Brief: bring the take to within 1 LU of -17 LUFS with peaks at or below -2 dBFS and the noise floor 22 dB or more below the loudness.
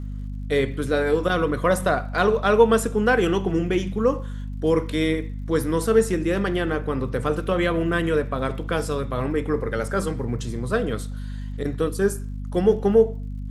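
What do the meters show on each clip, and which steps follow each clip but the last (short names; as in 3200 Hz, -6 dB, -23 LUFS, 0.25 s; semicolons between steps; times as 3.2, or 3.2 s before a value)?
ticks 53/s; hum 50 Hz; harmonics up to 250 Hz; hum level -28 dBFS; loudness -23.0 LUFS; peak -3.5 dBFS; loudness target -17.0 LUFS
-> de-click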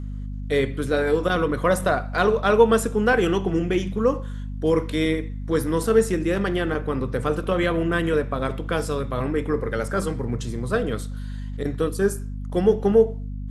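ticks 0.30/s; hum 50 Hz; harmonics up to 250 Hz; hum level -29 dBFS
-> de-hum 50 Hz, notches 5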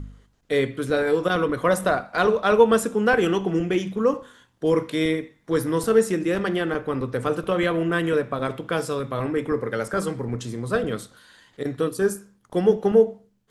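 hum none; loudness -23.0 LUFS; peak -4.5 dBFS; loudness target -17.0 LUFS
-> gain +6 dB; limiter -2 dBFS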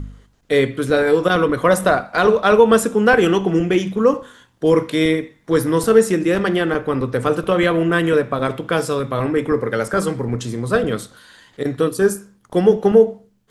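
loudness -17.5 LUFS; peak -2.0 dBFS; noise floor -58 dBFS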